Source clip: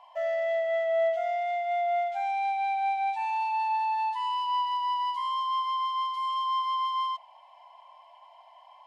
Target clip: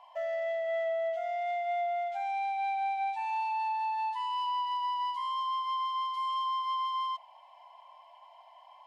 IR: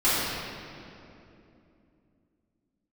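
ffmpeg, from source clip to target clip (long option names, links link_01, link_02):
-af "alimiter=level_in=2.5dB:limit=-24dB:level=0:latency=1:release=207,volume=-2.5dB,volume=-1.5dB"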